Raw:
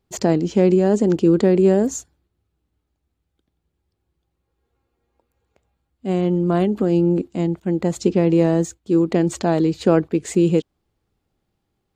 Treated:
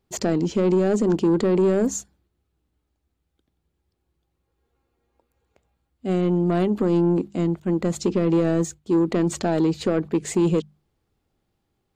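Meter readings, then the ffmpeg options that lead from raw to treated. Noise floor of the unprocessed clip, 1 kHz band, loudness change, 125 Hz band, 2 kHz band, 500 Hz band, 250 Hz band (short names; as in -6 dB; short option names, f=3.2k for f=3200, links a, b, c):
-76 dBFS, -3.0 dB, -3.5 dB, -3.5 dB, -2.0 dB, -3.5 dB, -3.0 dB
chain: -af "bandreject=f=50:t=h:w=6,bandreject=f=100:t=h:w=6,bandreject=f=150:t=h:w=6,bandreject=f=200:t=h:w=6,alimiter=limit=-8.5dB:level=0:latency=1:release=86,asoftclip=type=tanh:threshold=-12.5dB"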